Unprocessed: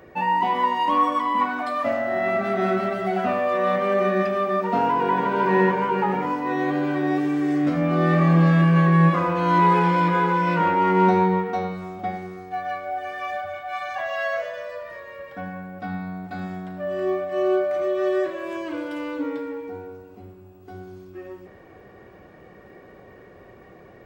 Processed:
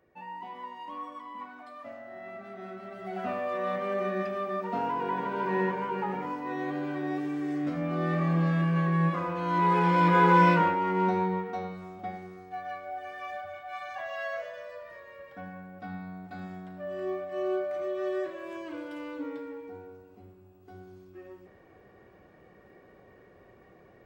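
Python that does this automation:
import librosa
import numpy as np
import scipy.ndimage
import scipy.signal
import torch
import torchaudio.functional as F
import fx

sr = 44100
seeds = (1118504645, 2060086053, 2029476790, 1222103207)

y = fx.gain(x, sr, db=fx.line((2.79, -20.0), (3.27, -9.5), (9.5, -9.5), (10.43, 3.0), (10.8, -9.0)))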